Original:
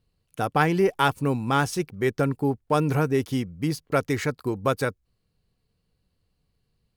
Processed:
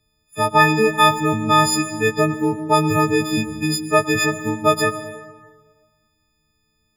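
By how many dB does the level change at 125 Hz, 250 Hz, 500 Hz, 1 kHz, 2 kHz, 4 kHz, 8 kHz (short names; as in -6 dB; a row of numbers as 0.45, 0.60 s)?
+2.0, +5.5, +5.5, +9.0, +9.5, +12.0, +13.5 dB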